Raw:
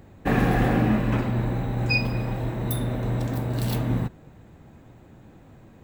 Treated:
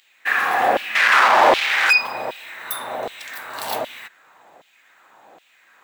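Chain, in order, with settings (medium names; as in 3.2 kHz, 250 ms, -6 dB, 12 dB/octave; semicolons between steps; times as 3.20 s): 0.95–1.93 s: overdrive pedal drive 37 dB, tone 2.1 kHz, clips at -12 dBFS; LFO high-pass saw down 1.3 Hz 590–3200 Hz; trim +6 dB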